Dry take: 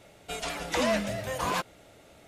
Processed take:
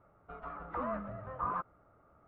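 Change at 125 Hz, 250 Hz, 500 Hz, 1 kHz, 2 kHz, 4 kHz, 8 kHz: -8.5 dB, -11.0 dB, -12.0 dB, -4.5 dB, -16.0 dB, under -35 dB, under -40 dB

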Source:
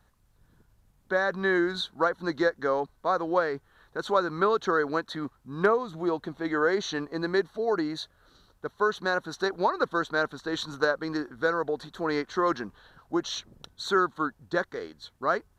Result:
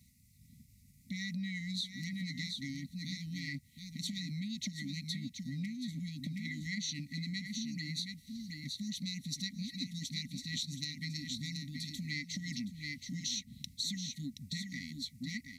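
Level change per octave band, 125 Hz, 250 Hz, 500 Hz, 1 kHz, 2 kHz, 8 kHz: +1.5 dB, -8.0 dB, under -40 dB, under -40 dB, -14.0 dB, +3.5 dB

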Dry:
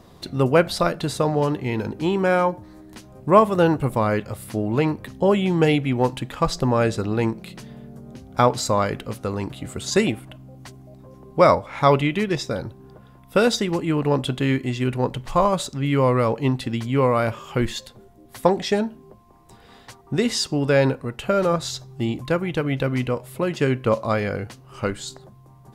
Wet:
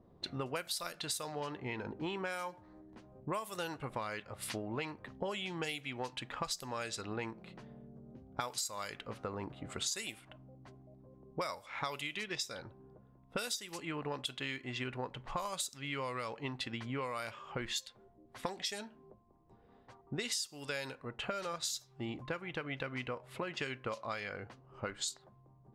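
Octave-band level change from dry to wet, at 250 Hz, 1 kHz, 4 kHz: -21.5 dB, -18.0 dB, -9.0 dB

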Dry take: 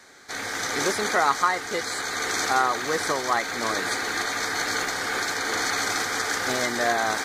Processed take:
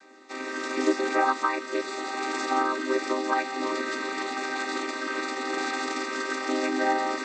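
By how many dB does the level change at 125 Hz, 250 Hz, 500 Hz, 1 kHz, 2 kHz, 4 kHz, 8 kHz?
under -15 dB, +4.5 dB, 0.0 dB, -2.5 dB, -5.0 dB, -8.0 dB, -12.0 dB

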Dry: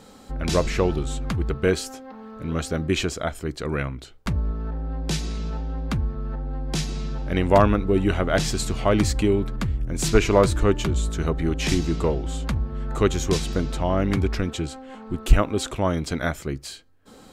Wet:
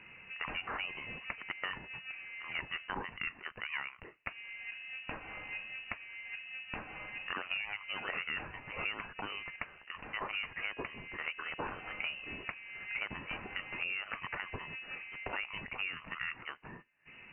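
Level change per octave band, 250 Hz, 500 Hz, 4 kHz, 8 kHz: -27.5 dB, -27.0 dB, -10.5 dB, under -40 dB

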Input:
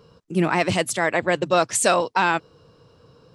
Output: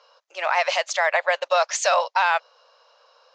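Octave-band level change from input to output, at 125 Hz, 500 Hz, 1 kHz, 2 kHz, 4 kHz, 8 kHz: under -40 dB, -1.5 dB, +1.0 dB, +1.0 dB, +1.0 dB, -3.5 dB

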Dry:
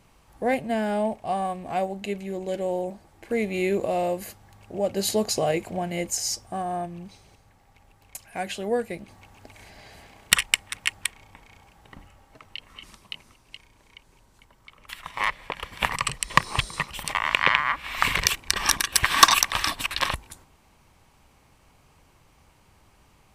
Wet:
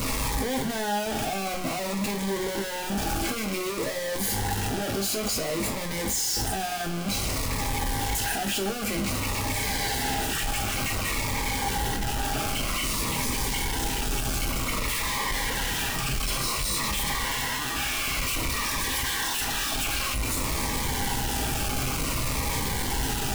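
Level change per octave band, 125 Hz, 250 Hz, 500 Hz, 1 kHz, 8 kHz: +7.0 dB, +2.0 dB, -3.5 dB, -2.0 dB, +1.5 dB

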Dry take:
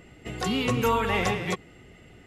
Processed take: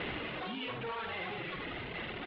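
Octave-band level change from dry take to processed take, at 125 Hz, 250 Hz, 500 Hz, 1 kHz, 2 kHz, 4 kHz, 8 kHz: -14.5 dB, -13.5 dB, -13.0 dB, -12.0 dB, -7.0 dB, -7.5 dB, under -40 dB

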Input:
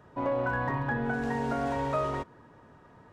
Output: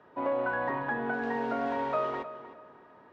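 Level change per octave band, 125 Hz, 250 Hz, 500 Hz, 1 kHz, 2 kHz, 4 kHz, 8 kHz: -13.0 dB, -3.0 dB, 0.0 dB, 0.0 dB, 0.0 dB, -2.0 dB, under -10 dB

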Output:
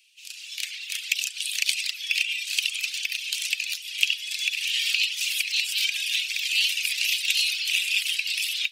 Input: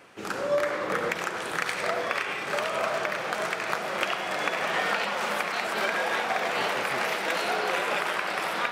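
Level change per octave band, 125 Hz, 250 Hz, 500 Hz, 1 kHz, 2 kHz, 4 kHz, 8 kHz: under -40 dB, under -40 dB, under -40 dB, under -35 dB, +1.0 dB, +11.5 dB, +11.0 dB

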